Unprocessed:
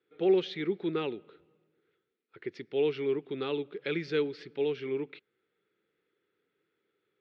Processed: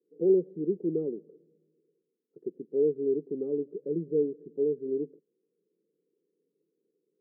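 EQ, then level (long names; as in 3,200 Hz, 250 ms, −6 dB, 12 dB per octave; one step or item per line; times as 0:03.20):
elliptic band-pass filter 160–490 Hz, stop band 70 dB
+3.0 dB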